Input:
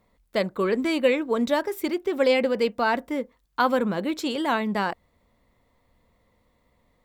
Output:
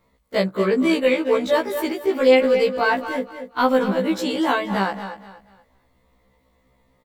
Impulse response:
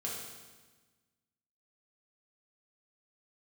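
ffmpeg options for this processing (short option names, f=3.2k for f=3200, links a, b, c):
-filter_complex "[0:a]asplit=2[a][b];[b]adelay=220,highpass=300,lowpass=3.4k,asoftclip=type=hard:threshold=-17dB,volume=-12dB[c];[a][c]amix=inputs=2:normalize=0,apsyclip=13.5dB,asplit=2[d][e];[e]aecho=0:1:239|478|717:0.224|0.0694|0.0215[f];[d][f]amix=inputs=2:normalize=0,afftfilt=real='re*1.73*eq(mod(b,3),0)':imag='im*1.73*eq(mod(b,3),0)':win_size=2048:overlap=0.75,volume=-8dB"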